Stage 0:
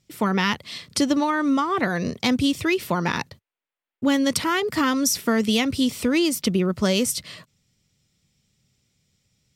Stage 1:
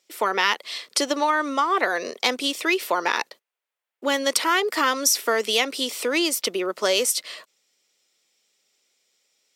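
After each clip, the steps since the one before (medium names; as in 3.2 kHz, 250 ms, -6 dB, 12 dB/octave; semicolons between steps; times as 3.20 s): high-pass 400 Hz 24 dB/octave; trim +3 dB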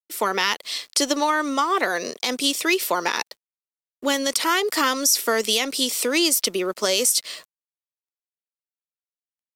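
tone controls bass +9 dB, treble +9 dB; peak limiter -8 dBFS, peak gain reduction 10.5 dB; crossover distortion -51 dBFS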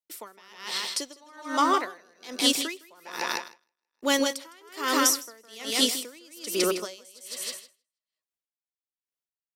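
feedback delay 159 ms, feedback 36%, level -4.5 dB; logarithmic tremolo 1.2 Hz, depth 33 dB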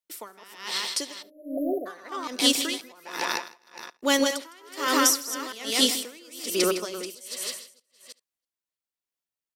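chunks repeated in reverse 325 ms, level -12.5 dB; spectral selection erased 1.23–1.86 s, 740–11000 Hz; delay 72 ms -23 dB; trim +1.5 dB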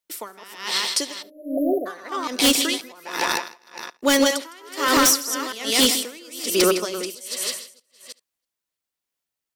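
wavefolder -15.5 dBFS; trim +6 dB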